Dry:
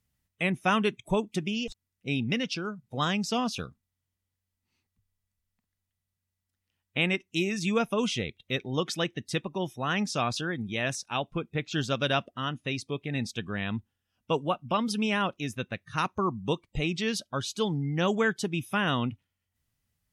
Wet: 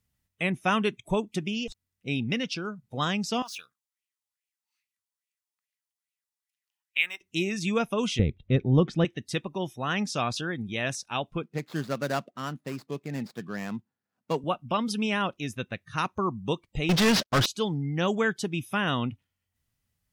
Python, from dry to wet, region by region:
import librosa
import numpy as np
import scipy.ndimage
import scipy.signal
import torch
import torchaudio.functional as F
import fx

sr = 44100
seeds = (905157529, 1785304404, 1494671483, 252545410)

y = fx.chain(x, sr, fx.median_filter(points=3),
    fx.differentiator(),
    fx.bell_lfo(hz=2.4, low_hz=820.0, high_hz=2600.0, db=16), at=(3.42, 7.21))
y = fx.chain(y, sr, fx.lowpass(hz=8300.0, slope=12),
    fx.tilt_eq(slope=-4.5), at=(8.19, 9.05))
y = fx.chain(y, sr, fx.median_filter(points=15),
    fx.cheby1_highpass(hz=150.0, order=3), at=(11.43, 14.44))
y = fx.chain(y, sr, fx.cvsd(bps=32000),
    fx.leveller(passes=5),
    fx.upward_expand(threshold_db=-31.0, expansion=1.5), at=(16.89, 17.46))